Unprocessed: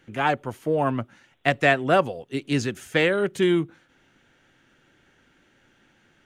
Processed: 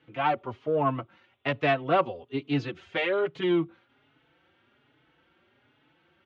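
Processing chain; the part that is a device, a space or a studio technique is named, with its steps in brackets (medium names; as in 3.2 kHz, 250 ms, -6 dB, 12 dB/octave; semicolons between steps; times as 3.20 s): barber-pole flanger into a guitar amplifier (endless flanger 4.2 ms +1.2 Hz; saturation -14.5 dBFS, distortion -18 dB; cabinet simulation 82–3800 Hz, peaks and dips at 200 Hz -9 dB, 1.1 kHz +4 dB, 1.7 kHz -6 dB)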